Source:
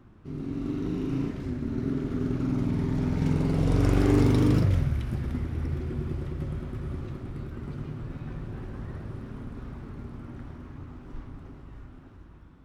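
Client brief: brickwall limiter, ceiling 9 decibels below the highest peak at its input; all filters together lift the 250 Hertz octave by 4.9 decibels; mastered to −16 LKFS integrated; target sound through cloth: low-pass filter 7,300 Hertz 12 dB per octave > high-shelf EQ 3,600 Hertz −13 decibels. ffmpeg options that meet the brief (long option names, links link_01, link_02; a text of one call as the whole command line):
ffmpeg -i in.wav -af "equalizer=frequency=250:width_type=o:gain=6,alimiter=limit=-17.5dB:level=0:latency=1,lowpass=7300,highshelf=frequency=3600:gain=-13,volume=13.5dB" out.wav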